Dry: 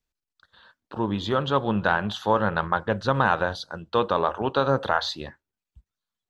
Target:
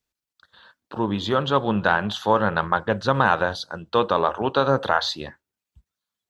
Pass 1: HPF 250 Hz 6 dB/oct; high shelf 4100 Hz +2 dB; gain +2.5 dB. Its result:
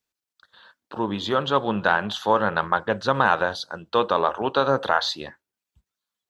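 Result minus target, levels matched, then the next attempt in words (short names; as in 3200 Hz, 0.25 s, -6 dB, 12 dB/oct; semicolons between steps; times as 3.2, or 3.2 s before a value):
125 Hz band -4.5 dB
HPF 80 Hz 6 dB/oct; high shelf 4100 Hz +2 dB; gain +2.5 dB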